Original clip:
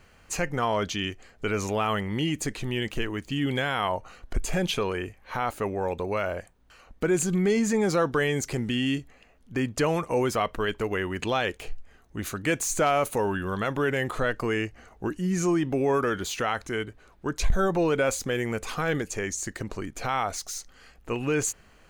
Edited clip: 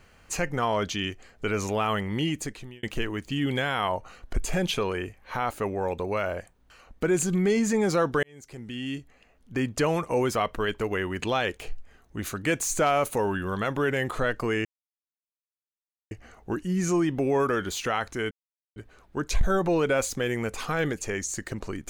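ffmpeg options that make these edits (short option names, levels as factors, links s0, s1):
-filter_complex "[0:a]asplit=5[s0][s1][s2][s3][s4];[s0]atrim=end=2.83,asetpts=PTS-STARTPTS,afade=t=out:st=2.27:d=0.56[s5];[s1]atrim=start=2.83:end=8.23,asetpts=PTS-STARTPTS,afade=t=in:d=0.004:c=hsin,afade=t=out:st=5.396:d=0.004:c=hsin[s6];[s2]atrim=start=8.23:end=14.65,asetpts=PTS-STARTPTS,afade=t=in:d=1.38,afade=t=out:st=6.416:d=0.004:c=hsin,apad=pad_dur=1.46[s7];[s3]atrim=start=14.65:end=16.85,asetpts=PTS-STARTPTS,afade=t=in:d=0.004:c=hsin,afade=t=out:st=2.196:d=0.004:c=hsin,apad=pad_dur=0.45[s8];[s4]atrim=start=16.85,asetpts=PTS-STARTPTS,afade=t=in:d=0.004:c=hsin[s9];[s5][s6][s7][s8][s9]concat=n=5:v=0:a=1"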